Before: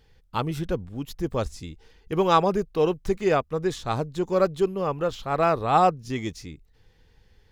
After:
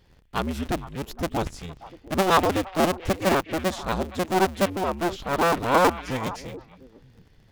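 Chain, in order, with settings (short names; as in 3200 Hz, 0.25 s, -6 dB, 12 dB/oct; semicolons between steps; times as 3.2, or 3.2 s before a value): cycle switcher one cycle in 2, inverted; delay with a stepping band-pass 0.232 s, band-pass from 2500 Hz, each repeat -1.4 oct, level -10 dB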